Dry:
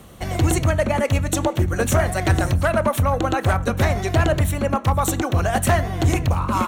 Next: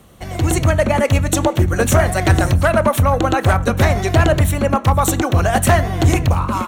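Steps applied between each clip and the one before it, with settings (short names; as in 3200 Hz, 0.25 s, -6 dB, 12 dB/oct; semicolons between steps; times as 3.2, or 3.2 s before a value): AGC gain up to 10 dB; gain -3 dB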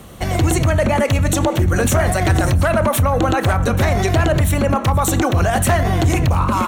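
limiter -16.5 dBFS, peak gain reduction 11 dB; gain +8 dB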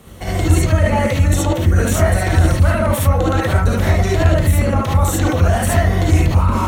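non-linear reverb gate 90 ms rising, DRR -4 dB; gain -6.5 dB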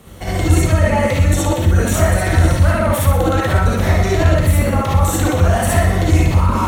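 thinning echo 61 ms, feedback 62%, level -7 dB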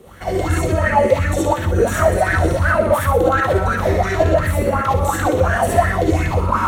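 LFO bell 2.8 Hz 380–1700 Hz +17 dB; gain -6.5 dB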